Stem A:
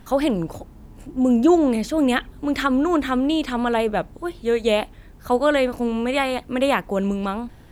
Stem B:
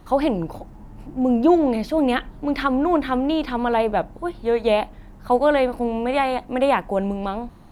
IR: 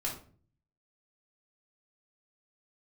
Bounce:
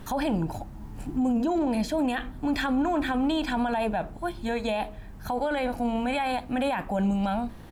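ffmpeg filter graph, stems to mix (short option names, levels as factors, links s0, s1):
-filter_complex "[0:a]volume=1.19,asplit=2[s0][s1];[s1]volume=0.0794[s2];[1:a]adelay=1.3,volume=0.75,asplit=2[s3][s4];[s4]apad=whole_len=340188[s5];[s0][s5]sidechaincompress=threshold=0.0398:ratio=4:attack=16:release=875[s6];[2:a]atrim=start_sample=2205[s7];[s2][s7]afir=irnorm=-1:irlink=0[s8];[s6][s3][s8]amix=inputs=3:normalize=0,alimiter=limit=0.106:level=0:latency=1:release=10"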